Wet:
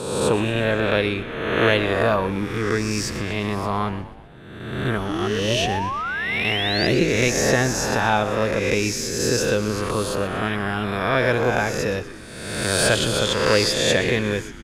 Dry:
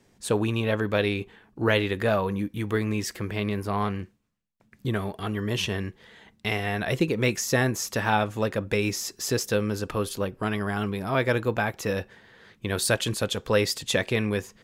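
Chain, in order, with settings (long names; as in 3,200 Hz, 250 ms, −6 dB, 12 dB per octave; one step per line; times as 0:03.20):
peak hold with a rise ahead of every peak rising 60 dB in 1.28 s
low-pass filter 10,000 Hz 12 dB per octave
sound drawn into the spectrogram rise, 0:05.09–0:06.87, 290–5,000 Hz −28 dBFS
echo with shifted repeats 122 ms, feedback 58%, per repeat −84 Hz, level −14 dB
level +1.5 dB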